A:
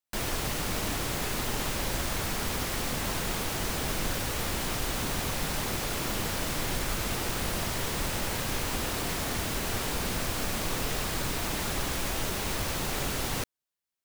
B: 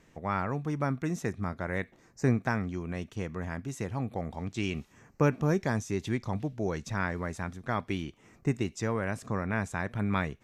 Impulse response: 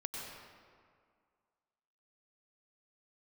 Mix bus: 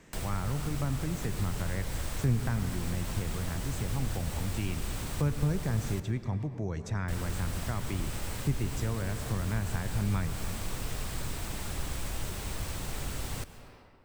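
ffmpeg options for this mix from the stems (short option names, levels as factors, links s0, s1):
-filter_complex "[0:a]volume=0.841,asplit=3[s0][s1][s2];[s0]atrim=end=6,asetpts=PTS-STARTPTS,afade=t=out:st=5.996:d=0.004:c=hsin[s3];[s1]atrim=start=6:end=7.08,asetpts=PTS-STARTPTS,volume=0[s4];[s2]atrim=start=7.08,asetpts=PTS-STARTPTS,afade=t=in:d=0.004:c=hsin[s5];[s3][s4][s5]concat=n=3:v=0:a=1,asplit=2[s6][s7];[s7]volume=0.299[s8];[1:a]volume=1.33,asplit=2[s9][s10];[s10]volume=0.473[s11];[2:a]atrim=start_sample=2205[s12];[s8][s11]amix=inputs=2:normalize=0[s13];[s13][s12]afir=irnorm=-1:irlink=0[s14];[s6][s9][s14]amix=inputs=3:normalize=0,equalizer=f=8100:t=o:w=0.21:g=6.5,acrossover=split=140[s15][s16];[s16]acompressor=threshold=0.00501:ratio=2[s17];[s15][s17]amix=inputs=2:normalize=0"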